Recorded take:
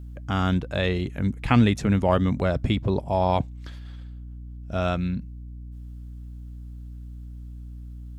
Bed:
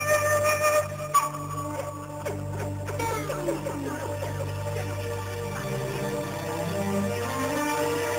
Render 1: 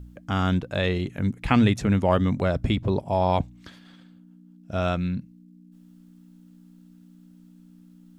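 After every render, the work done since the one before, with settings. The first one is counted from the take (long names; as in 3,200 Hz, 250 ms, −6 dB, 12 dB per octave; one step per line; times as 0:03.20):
hum removal 60 Hz, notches 2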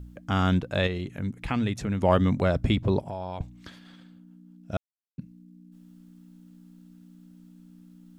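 0:00.87–0:02.01: downward compressor 1.5 to 1, threshold −37 dBFS
0:03.01–0:03.41: downward compressor 5 to 1, threshold −32 dBFS
0:04.77–0:05.18: silence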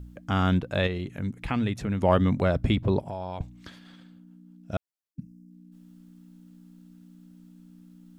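0:05.13–0:05.51: gain on a spectral selection 310–4,700 Hz −11 dB
dynamic equaliser 6,600 Hz, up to −5 dB, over −52 dBFS, Q 1.2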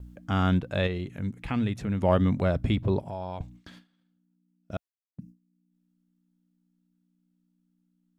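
harmonic and percussive parts rebalanced percussive −4 dB
noise gate with hold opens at −39 dBFS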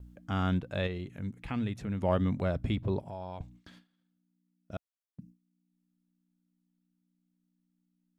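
level −5.5 dB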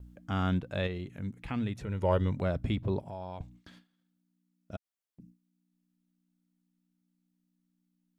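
0:01.81–0:02.36: comb filter 2.1 ms, depth 60%
0:04.76–0:05.20: downward compressor, threshold −53 dBFS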